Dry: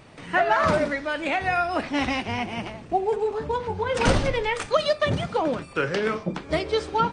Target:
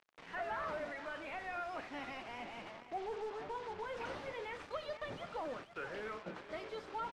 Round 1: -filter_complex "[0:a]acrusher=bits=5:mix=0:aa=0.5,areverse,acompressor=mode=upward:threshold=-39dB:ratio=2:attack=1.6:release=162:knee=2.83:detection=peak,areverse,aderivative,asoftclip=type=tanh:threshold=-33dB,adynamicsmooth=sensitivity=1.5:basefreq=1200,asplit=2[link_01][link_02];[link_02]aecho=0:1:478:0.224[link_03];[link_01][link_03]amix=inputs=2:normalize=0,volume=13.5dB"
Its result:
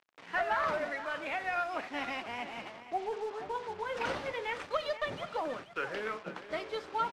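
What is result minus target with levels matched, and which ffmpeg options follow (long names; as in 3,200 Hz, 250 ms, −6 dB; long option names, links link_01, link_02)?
soft clipping: distortion −8 dB
-filter_complex "[0:a]acrusher=bits=5:mix=0:aa=0.5,areverse,acompressor=mode=upward:threshold=-39dB:ratio=2:attack=1.6:release=162:knee=2.83:detection=peak,areverse,aderivative,asoftclip=type=tanh:threshold=-44dB,adynamicsmooth=sensitivity=1.5:basefreq=1200,asplit=2[link_01][link_02];[link_02]aecho=0:1:478:0.224[link_03];[link_01][link_03]amix=inputs=2:normalize=0,volume=13.5dB"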